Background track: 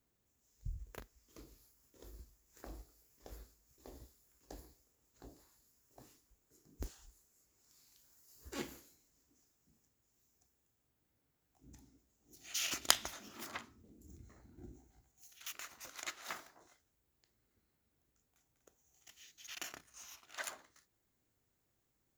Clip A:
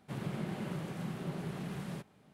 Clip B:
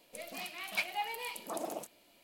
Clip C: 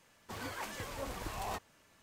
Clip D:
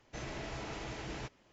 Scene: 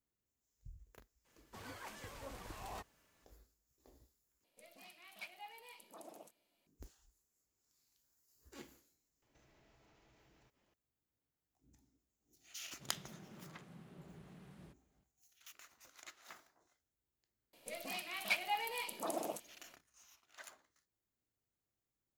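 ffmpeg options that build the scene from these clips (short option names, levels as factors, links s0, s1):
-filter_complex "[2:a]asplit=2[s0][s1];[0:a]volume=0.282[s2];[4:a]acompressor=threshold=0.00158:ratio=6:attack=3.2:release=140:knee=1:detection=peak[s3];[s2]asplit=2[s4][s5];[s4]atrim=end=4.444[s6];[s0]atrim=end=2.23,asetpts=PTS-STARTPTS,volume=0.158[s7];[s5]atrim=start=6.666[s8];[3:a]atrim=end=2.02,asetpts=PTS-STARTPTS,volume=0.376,afade=t=in:d=0.02,afade=t=out:st=2:d=0.02,adelay=1240[s9];[s3]atrim=end=1.52,asetpts=PTS-STARTPTS,volume=0.251,afade=t=in:d=0.004:c=hsin,afade=t=out:st=1.516:d=0.004:c=hsin,adelay=406602S[s10];[1:a]atrim=end=2.33,asetpts=PTS-STARTPTS,volume=0.133,afade=t=in:d=0.004:c=hsin,afade=t=out:st=2.326:d=0.004:c=hsin,adelay=12710[s11];[s1]atrim=end=2.23,asetpts=PTS-STARTPTS,volume=0.891,afade=t=in:d=0.004:c=hsin,afade=t=out:st=2.226:d=0.004:c=hsin,adelay=17530[s12];[s6][s7]acrossfade=d=0.004:c1=hsin:c2=hsin[s13];[s13][s8]acrossfade=d=0.004:c1=hsin:c2=hsin[s14];[s14][s9][s10][s11][s12]amix=inputs=5:normalize=0"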